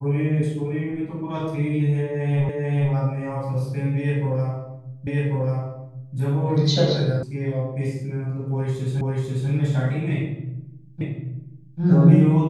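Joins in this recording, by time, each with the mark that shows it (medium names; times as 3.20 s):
2.49 s: repeat of the last 0.44 s
5.07 s: repeat of the last 1.09 s
7.23 s: sound stops dead
9.01 s: repeat of the last 0.49 s
11.01 s: repeat of the last 0.79 s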